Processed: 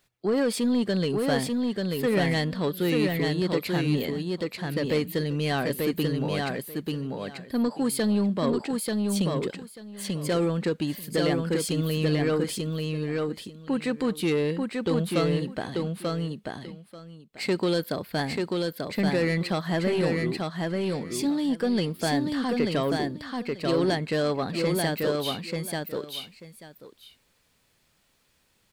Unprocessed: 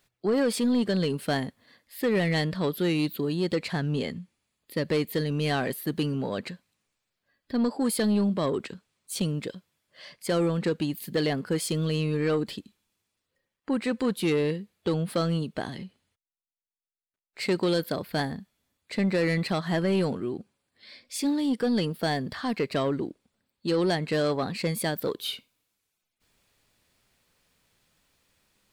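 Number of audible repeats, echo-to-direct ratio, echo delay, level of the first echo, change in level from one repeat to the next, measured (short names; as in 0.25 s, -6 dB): 2, -3.0 dB, 0.888 s, -3.0 dB, -15.5 dB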